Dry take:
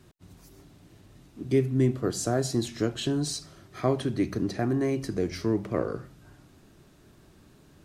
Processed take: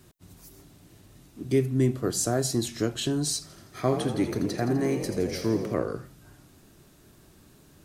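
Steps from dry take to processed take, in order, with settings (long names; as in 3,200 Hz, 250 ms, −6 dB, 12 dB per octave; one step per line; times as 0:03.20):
high-shelf EQ 7,300 Hz +11 dB
0:03.41–0:05.74: echo with shifted repeats 84 ms, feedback 62%, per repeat +45 Hz, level −9 dB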